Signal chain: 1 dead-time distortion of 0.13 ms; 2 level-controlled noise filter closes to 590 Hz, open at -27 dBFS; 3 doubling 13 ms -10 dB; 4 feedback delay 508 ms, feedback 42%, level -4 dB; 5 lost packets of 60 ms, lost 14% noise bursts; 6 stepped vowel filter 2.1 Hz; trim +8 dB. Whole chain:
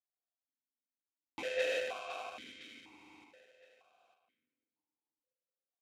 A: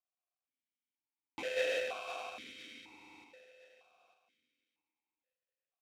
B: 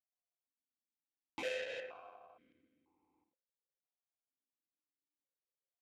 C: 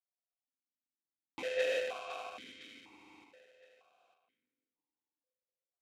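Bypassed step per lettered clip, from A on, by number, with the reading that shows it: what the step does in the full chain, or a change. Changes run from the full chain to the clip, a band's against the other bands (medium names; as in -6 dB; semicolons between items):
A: 2, momentary loudness spread change +3 LU; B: 4, momentary loudness spread change -2 LU; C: 3, 500 Hz band +2.0 dB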